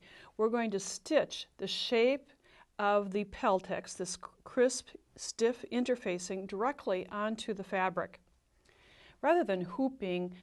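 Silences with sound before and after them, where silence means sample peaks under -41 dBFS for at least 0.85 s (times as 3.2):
8.15–9.23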